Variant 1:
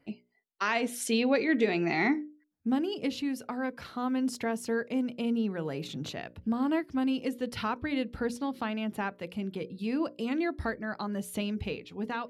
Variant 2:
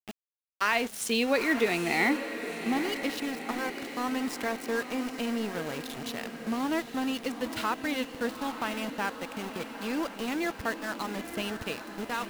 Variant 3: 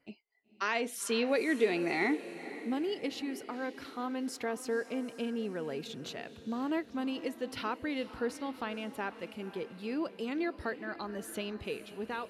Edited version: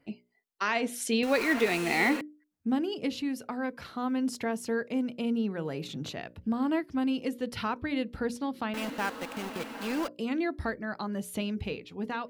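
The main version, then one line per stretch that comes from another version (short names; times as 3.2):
1
1.23–2.21 from 2
8.74–10.08 from 2
not used: 3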